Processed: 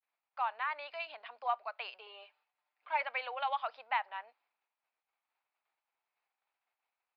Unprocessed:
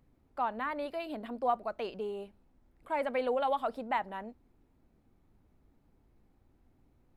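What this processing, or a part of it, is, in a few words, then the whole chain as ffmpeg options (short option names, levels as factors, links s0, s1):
musical greeting card: -filter_complex "[0:a]agate=range=0.0224:threshold=0.00112:ratio=3:detection=peak,asettb=1/sr,asplit=3[s0][s1][s2];[s0]atrim=end=2.064[s3];[s1]atrim=start=2.06:end=3.03,asetpts=PTS-STARTPTS,afade=t=in:d=0.004:c=qsin,afade=t=out:st=0.966:d=0.004:c=qsin,aecho=1:1:6.7:0.71,atrim=end_sample=42777[s4];[s2]atrim=start=3.026[s5];[s3][s4]acrossfade=d=0.004:c1=hsin:c2=qsin[s6];[s6][s5]acrossfade=d=0.004:c1=qsin:c2=hsin,aresample=11025,aresample=44100,highpass=f=810:w=0.5412,highpass=f=810:w=1.3066,equalizer=f=2500:t=o:w=0.43:g=7"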